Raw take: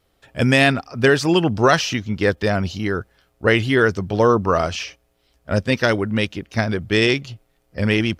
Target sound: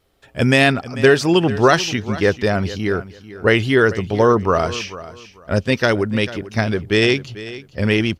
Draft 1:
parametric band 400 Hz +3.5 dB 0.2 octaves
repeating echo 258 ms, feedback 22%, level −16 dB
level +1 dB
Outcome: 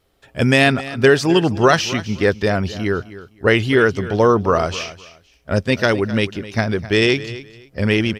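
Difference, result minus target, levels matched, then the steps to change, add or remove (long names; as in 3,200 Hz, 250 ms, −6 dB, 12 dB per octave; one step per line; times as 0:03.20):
echo 185 ms early
change: repeating echo 443 ms, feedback 22%, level −16 dB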